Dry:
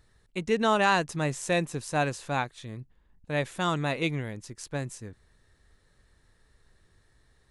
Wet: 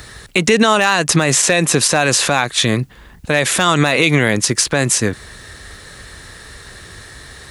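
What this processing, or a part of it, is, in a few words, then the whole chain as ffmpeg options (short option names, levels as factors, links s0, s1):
mastering chain: -filter_complex "[0:a]highpass=44,equalizer=f=910:t=o:w=0.23:g=-3.5,acrossover=split=140|5100[s0][s1][s2];[s0]acompressor=threshold=0.00251:ratio=4[s3];[s1]acompressor=threshold=0.0398:ratio=4[s4];[s2]acompressor=threshold=0.00447:ratio=4[s5];[s3][s4][s5]amix=inputs=3:normalize=0,acompressor=threshold=0.0112:ratio=1.5,tiltshelf=f=750:g=-4,asoftclip=type=hard:threshold=0.0708,alimiter=level_in=33.5:limit=0.891:release=50:level=0:latency=1,volume=0.891"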